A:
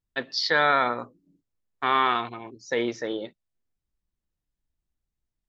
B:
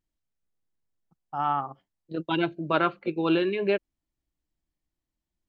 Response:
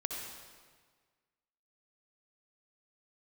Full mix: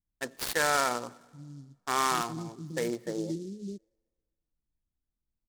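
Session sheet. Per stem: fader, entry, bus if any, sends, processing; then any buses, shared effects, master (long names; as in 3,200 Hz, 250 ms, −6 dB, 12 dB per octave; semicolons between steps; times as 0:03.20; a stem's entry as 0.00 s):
−5.5 dB, 0.05 s, send −22 dB, adaptive Wiener filter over 15 samples
−4.0 dB, 0.00 s, no send, inverse Chebyshev low-pass filter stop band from 700 Hz, stop band 50 dB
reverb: on, RT60 1.6 s, pre-delay 57 ms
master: short delay modulated by noise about 5,300 Hz, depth 0.048 ms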